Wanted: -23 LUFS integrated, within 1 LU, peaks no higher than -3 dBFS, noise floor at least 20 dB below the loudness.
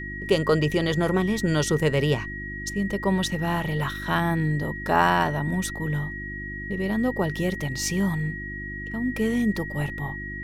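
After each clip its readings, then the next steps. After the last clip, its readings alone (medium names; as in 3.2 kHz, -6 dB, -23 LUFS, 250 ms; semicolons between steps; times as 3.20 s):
hum 50 Hz; highest harmonic 350 Hz; hum level -35 dBFS; steady tone 1.9 kHz; tone level -34 dBFS; loudness -25.5 LUFS; peak level -6.0 dBFS; loudness target -23.0 LUFS
-> de-hum 50 Hz, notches 7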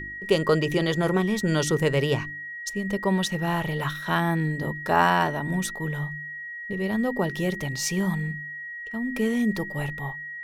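hum not found; steady tone 1.9 kHz; tone level -34 dBFS
-> band-stop 1.9 kHz, Q 30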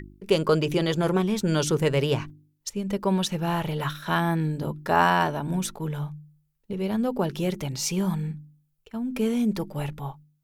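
steady tone not found; loudness -26.0 LUFS; peak level -6.5 dBFS; loudness target -23.0 LUFS
-> trim +3 dB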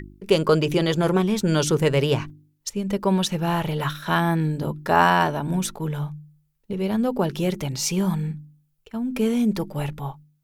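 loudness -23.0 LUFS; peak level -3.5 dBFS; noise floor -67 dBFS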